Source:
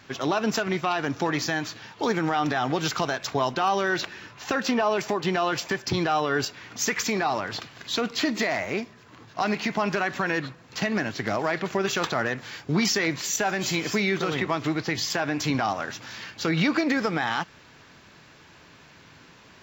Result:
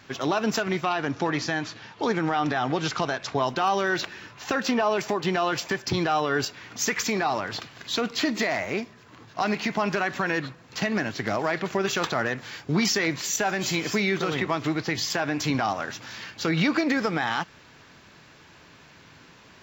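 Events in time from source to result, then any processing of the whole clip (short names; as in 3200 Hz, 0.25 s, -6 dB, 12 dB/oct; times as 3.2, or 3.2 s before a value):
0.89–3.48 air absorption 55 m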